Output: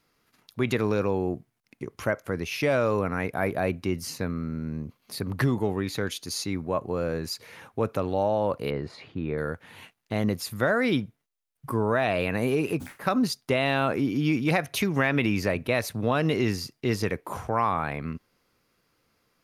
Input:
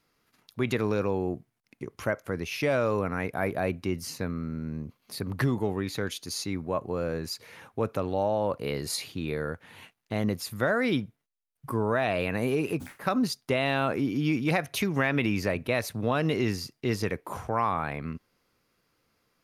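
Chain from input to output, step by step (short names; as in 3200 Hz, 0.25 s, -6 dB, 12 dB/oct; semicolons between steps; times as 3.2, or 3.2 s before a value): 8.7–9.38 LPF 1700 Hz 12 dB/oct; gain +2 dB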